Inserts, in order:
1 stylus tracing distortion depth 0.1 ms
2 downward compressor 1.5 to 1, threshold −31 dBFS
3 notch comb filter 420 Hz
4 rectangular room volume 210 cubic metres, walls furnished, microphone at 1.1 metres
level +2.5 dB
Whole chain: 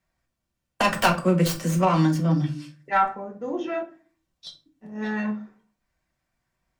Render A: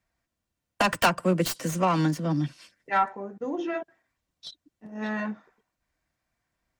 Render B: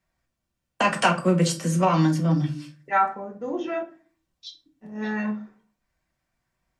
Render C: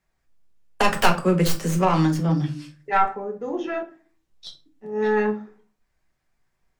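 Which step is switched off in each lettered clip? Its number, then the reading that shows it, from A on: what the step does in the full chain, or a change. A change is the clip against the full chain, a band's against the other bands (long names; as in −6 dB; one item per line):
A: 4, echo-to-direct ratio −3.0 dB to none audible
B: 1, 8 kHz band +2.0 dB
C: 3, 500 Hz band +2.0 dB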